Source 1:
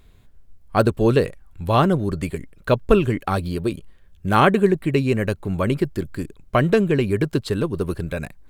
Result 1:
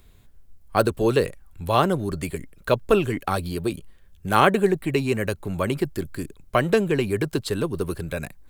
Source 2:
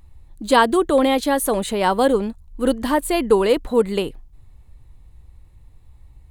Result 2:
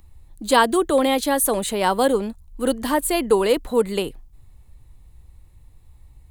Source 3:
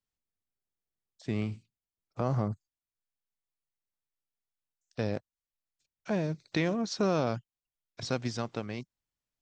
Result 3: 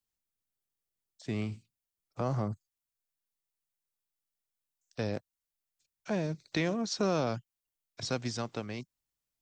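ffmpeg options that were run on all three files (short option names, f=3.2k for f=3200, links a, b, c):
-filter_complex "[0:a]highshelf=f=6.2k:g=8,acrossover=split=270|3300[a][b][c];[a]asoftclip=type=tanh:threshold=-24.5dB[d];[d][b][c]amix=inputs=3:normalize=0,volume=-1.5dB"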